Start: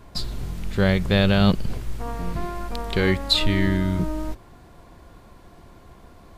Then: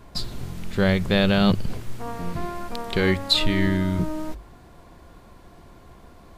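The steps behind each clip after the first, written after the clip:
mains-hum notches 50/100 Hz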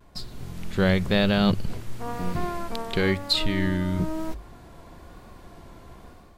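automatic gain control gain up to 9.5 dB
pitch vibrato 1 Hz 46 cents
level −7.5 dB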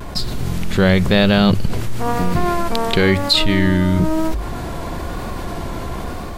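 envelope flattener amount 50%
level +6.5 dB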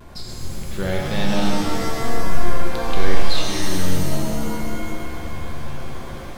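reverb with rising layers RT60 2.3 s, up +7 semitones, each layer −2 dB, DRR −1 dB
level −13.5 dB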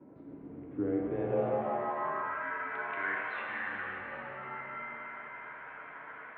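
single-sideband voice off tune −83 Hz 160–2,600 Hz
band-pass filter sweep 300 Hz → 1,600 Hz, 0:01.03–0:02.47

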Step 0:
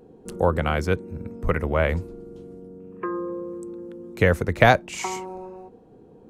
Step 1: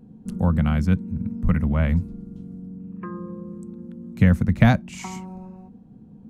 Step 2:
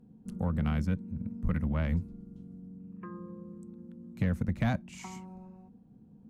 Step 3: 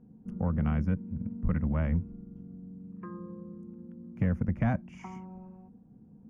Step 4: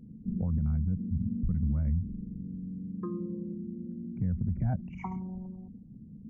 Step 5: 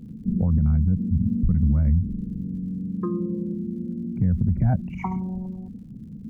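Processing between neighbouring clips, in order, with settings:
low shelf with overshoot 290 Hz +10 dB, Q 3; level −6 dB
harmonic generator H 7 −26 dB, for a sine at −3 dBFS; brickwall limiter −13.5 dBFS, peak gain reduction 9.5 dB; level −6 dB
moving average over 11 samples; level +1.5 dB
spectral envelope exaggerated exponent 2; brickwall limiter −28.5 dBFS, peak gain reduction 10 dB; level +6.5 dB
surface crackle 99 per second −61 dBFS; level +9 dB

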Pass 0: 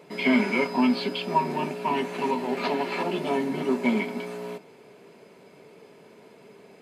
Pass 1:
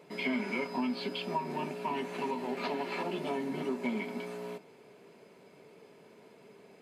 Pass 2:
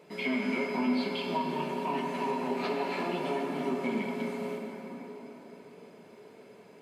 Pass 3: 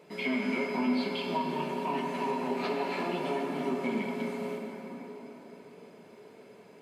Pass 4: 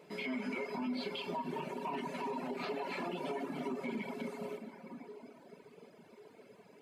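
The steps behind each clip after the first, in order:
downward compressor 2.5 to 1, threshold −26 dBFS, peak gain reduction 7 dB; level −5.5 dB
dense smooth reverb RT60 4.6 s, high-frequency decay 0.55×, DRR 0.5 dB
no processing that can be heard
reverb reduction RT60 1.5 s; brickwall limiter −28 dBFS, peak gain reduction 8 dB; level −2 dB

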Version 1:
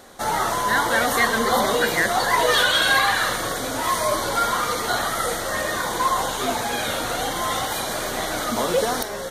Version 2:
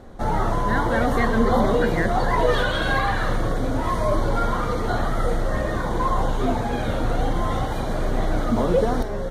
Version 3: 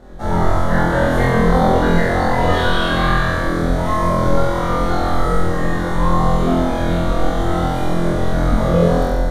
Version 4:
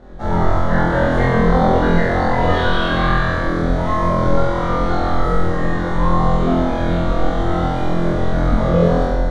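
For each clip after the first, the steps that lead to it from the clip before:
spectral tilt −4.5 dB per octave; level −3 dB
sub-octave generator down 2 octaves, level 0 dB; flutter between parallel walls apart 4 metres, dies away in 1.2 s; on a send at −6 dB: convolution reverb RT60 1.2 s, pre-delay 10 ms; on the sum: level −2 dB
high-frequency loss of the air 91 metres

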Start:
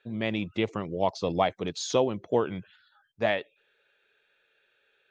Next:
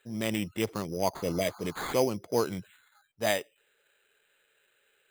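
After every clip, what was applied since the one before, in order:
healed spectral selection 0:01.22–0:01.88, 670–1,600 Hz after
transient designer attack −5 dB, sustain −1 dB
sample-rate reduction 5,500 Hz, jitter 0%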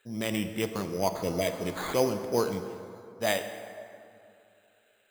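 dense smooth reverb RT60 2.6 s, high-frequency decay 0.55×, DRR 7 dB

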